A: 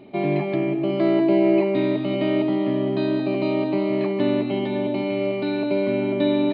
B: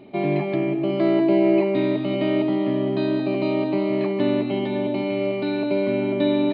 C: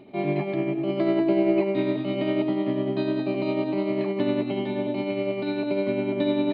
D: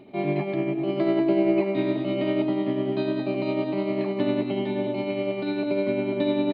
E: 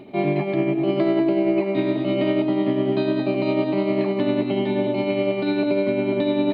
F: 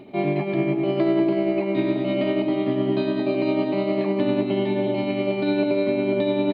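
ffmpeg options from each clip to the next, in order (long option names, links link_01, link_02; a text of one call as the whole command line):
ffmpeg -i in.wav -af anull out.wav
ffmpeg -i in.wav -af "acontrast=26,tremolo=f=10:d=0.39,volume=-6.5dB" out.wav
ffmpeg -i in.wav -af "aecho=1:1:642:0.178" out.wav
ffmpeg -i in.wav -af "alimiter=limit=-17dB:level=0:latency=1:release=305,areverse,acompressor=mode=upward:threshold=-30dB:ratio=2.5,areverse,volume=5.5dB" out.wav
ffmpeg -i in.wav -af "aecho=1:1:326:0.335,volume=-1.5dB" out.wav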